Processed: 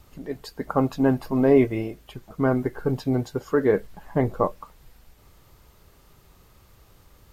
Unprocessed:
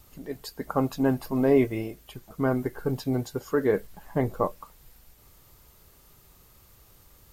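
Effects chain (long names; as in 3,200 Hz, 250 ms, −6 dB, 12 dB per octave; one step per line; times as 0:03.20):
low-pass filter 3,700 Hz 6 dB per octave
level +3.5 dB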